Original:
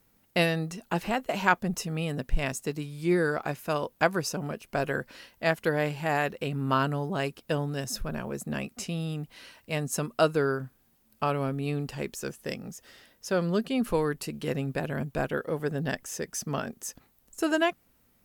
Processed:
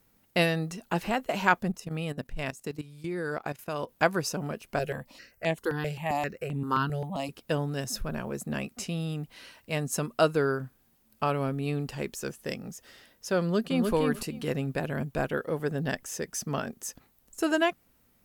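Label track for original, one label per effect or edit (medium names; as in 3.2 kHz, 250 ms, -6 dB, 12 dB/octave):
1.710000	3.890000	level held to a coarse grid steps of 16 dB
4.790000	7.290000	stepped phaser 7.6 Hz 280–5000 Hz
13.400000	13.920000	echo throw 300 ms, feedback 15%, level -3.5 dB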